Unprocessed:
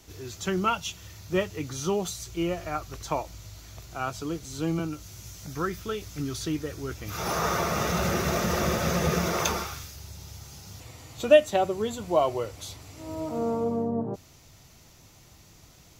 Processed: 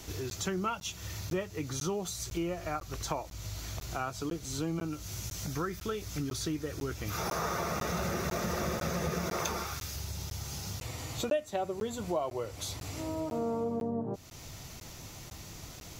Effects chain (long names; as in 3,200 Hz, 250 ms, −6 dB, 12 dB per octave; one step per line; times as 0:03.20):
dynamic equaliser 3,000 Hz, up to −4 dB, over −50 dBFS, Q 3.6
downward compressor 3 to 1, threshold −43 dBFS, peak gain reduction 22.5 dB
regular buffer underruns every 0.50 s, samples 512, zero, from 0:00.30
level +7.5 dB